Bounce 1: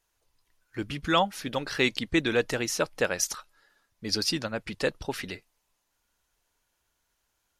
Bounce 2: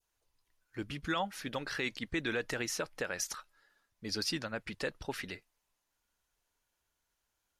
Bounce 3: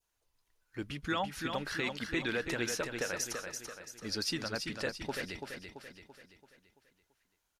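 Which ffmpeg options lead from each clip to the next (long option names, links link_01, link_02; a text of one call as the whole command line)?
ffmpeg -i in.wav -af "adynamicequalizer=threshold=0.0112:dfrequency=1700:dqfactor=1.3:tfrequency=1700:tqfactor=1.3:attack=5:release=100:ratio=0.375:range=2.5:mode=boostabove:tftype=bell,alimiter=limit=-16.5dB:level=0:latency=1:release=49,volume=-6.5dB" out.wav
ffmpeg -i in.wav -af "aecho=1:1:336|672|1008|1344|1680|2016:0.501|0.241|0.115|0.0554|0.0266|0.0128" out.wav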